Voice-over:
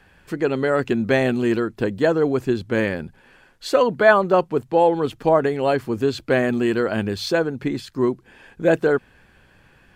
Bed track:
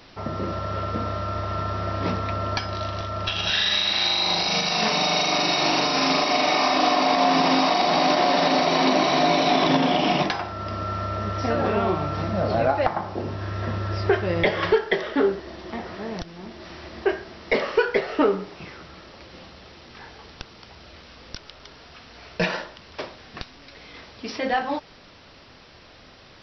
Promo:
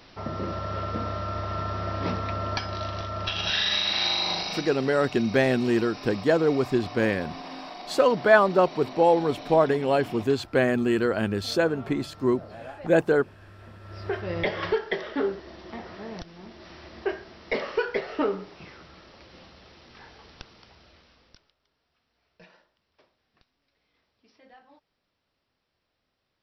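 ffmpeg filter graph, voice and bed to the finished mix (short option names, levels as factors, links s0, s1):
-filter_complex "[0:a]adelay=4250,volume=0.708[s0];[1:a]volume=3.55,afade=t=out:st=4.15:d=0.63:silence=0.141254,afade=t=in:st=13.8:d=0.55:silence=0.199526,afade=t=out:st=20.42:d=1.13:silence=0.0630957[s1];[s0][s1]amix=inputs=2:normalize=0"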